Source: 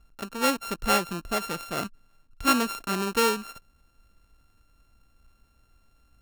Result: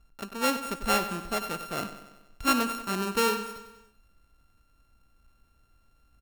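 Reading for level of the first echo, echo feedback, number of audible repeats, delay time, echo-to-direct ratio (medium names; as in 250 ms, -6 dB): -12.0 dB, 56%, 5, 95 ms, -10.5 dB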